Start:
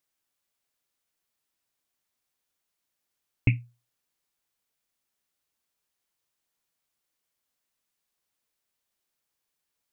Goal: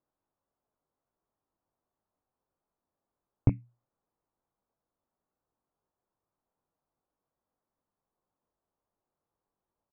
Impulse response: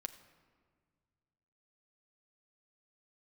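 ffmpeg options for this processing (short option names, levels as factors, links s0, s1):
-filter_complex "[0:a]lowpass=f=1100:w=0.5412,lowpass=f=1100:w=1.3066,acompressor=threshold=0.0316:ratio=1.5,asplit=2[s0][s1];[s1]adelay=21,volume=0.473[s2];[s0][s2]amix=inputs=2:normalize=0,volume=1.68"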